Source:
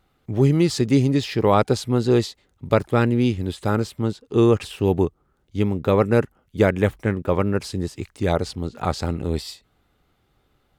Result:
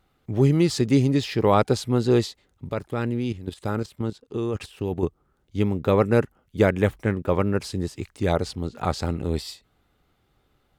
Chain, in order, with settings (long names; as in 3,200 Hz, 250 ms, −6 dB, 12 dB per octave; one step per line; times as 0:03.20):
0:02.70–0:05.03: output level in coarse steps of 12 dB
level −1.5 dB